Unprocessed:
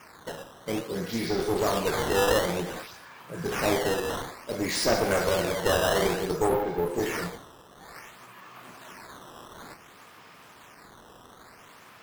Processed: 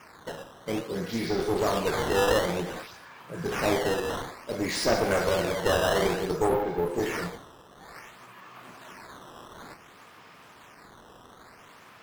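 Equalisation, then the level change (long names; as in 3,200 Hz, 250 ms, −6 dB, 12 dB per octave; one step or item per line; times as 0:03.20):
high-shelf EQ 6,900 Hz −5.5 dB
0.0 dB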